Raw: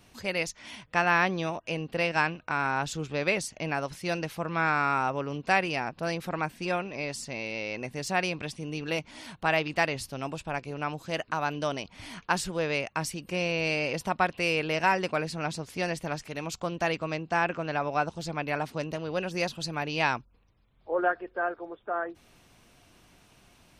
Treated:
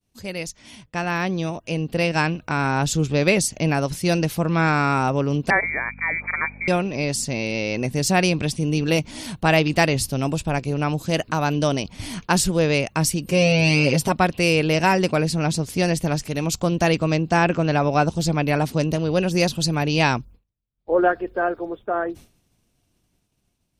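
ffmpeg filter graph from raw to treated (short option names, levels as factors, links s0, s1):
-filter_complex "[0:a]asettb=1/sr,asplit=3[s0][s1][s2];[s0]atrim=end=5.504[s3];[s1]atrim=start=5.5:end=6.68,asetpts=PTS-STARTPTS,afade=t=in:d=0.004:c=qsin,afade=t=out:st=1.176:d=0.004:c=qsin,lowpass=f=2100:t=q:w=0.5098,lowpass=f=2100:t=q:w=0.6013,lowpass=f=2100:t=q:w=0.9,lowpass=f=2100:t=q:w=2.563,afreqshift=-2500,aeval=exprs='val(0)+0.00562*(sin(2*PI*50*n/s)+sin(2*PI*2*50*n/s)/2+sin(2*PI*3*50*n/s)/3+sin(2*PI*4*50*n/s)/4+sin(2*PI*5*50*n/s)/5)':c=same,aemphasis=mode=production:type=bsi[s4];[s2]atrim=start=6.676[s5];[s3][s4]acrossfade=d=0.004:c1=hsin:c2=qsin[s6];[s6][s5]acrossfade=d=0.004:c1=qsin:c2=hsin,asettb=1/sr,asplit=3[s7][s8][s9];[s7]atrim=end=13.294[s10];[s8]atrim=start=13.29:end=14.12,asetpts=PTS-STARTPTS,afade=t=in:d=0.004:c=qsin,afade=t=out:st=0.826:d=0.004:c=qsin,highpass=43,aecho=1:1:7.4:0.81,atrim=end_sample=36603[s11];[s9]atrim=start=14.116[s12];[s10][s11]acrossfade=d=0.004:c1=hsin:c2=qsin[s13];[s13][s12]acrossfade=d=0.004:c1=qsin:c2=hsin,agate=range=0.0224:threshold=0.00501:ratio=3:detection=peak,dynaudnorm=f=410:g=9:m=4.22,equalizer=f=1400:w=0.35:g=-12,volume=2.24"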